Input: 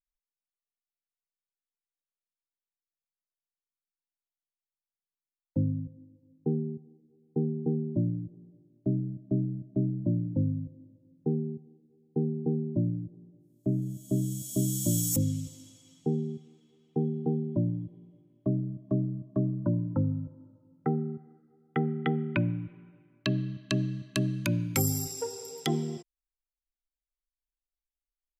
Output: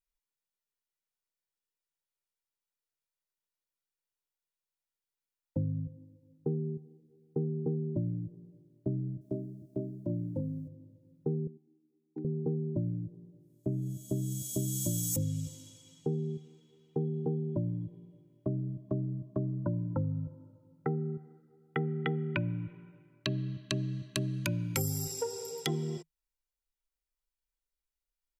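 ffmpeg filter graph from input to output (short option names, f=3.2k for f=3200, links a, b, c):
-filter_complex "[0:a]asettb=1/sr,asplit=3[a][b][c];[a]atrim=end=9.214[d];[b]atrim=start=9.21:end=10.68,asetpts=PTS-STARTPTS,afade=t=in:d=0.004:c=qsin,afade=t=out:st=1.466:d=0.004:c=qsin,bass=f=250:g=-8,treble=f=4k:g=12,asplit=2[e][f];[f]adelay=34,volume=-7dB[g];[e][g]amix=inputs=2:normalize=0,atrim=end_sample=64827[h];[c]atrim=start=10.676[i];[d][h]acrossfade=d=0.004:c1=hsin:c2=qsin[j];[j][i]acrossfade=d=0.004:c1=qsin:c2=hsin,asettb=1/sr,asplit=3[k][l][m];[k]atrim=end=11.474[n];[l]atrim=start=11.47:end=12.25,asetpts=PTS-STARTPTS,afade=t=in:d=0.004:c=qsin,afade=t=out:st=0.776:d=0.004:c=qsin,asplit=3[o][p][q];[o]bandpass=f=300:t=q:w=8,volume=0dB[r];[p]bandpass=f=870:t=q:w=8,volume=-6dB[s];[q]bandpass=f=2.24k:t=q:w=8,volume=-9dB[t];[r][s][t]amix=inputs=3:normalize=0,aeval=exprs='clip(val(0),-1,0.0299)':c=same[u];[m]atrim=start=12.246[v];[n][u]acrossfade=d=0.004:c1=hsin:c2=qsin[w];[w][v]acrossfade=d=0.004:c1=qsin:c2=hsin,equalizer=f=160:w=6.4:g=4.5,aecho=1:1:2.1:0.4,acompressor=threshold=-30dB:ratio=3"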